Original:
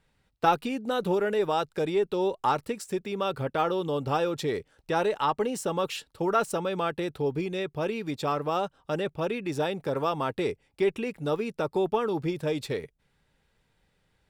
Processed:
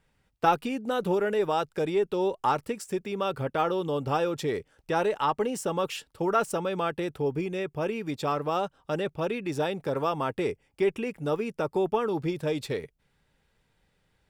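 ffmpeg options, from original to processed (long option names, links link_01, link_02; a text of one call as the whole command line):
ffmpeg -i in.wav -af "asetnsamples=nb_out_samples=441:pad=0,asendcmd='7.16 equalizer g -14;8.09 equalizer g -2.5;10.06 equalizer g -9.5;12.13 equalizer g -1',equalizer=frequency=4000:width_type=o:width=0.25:gain=-5.5" out.wav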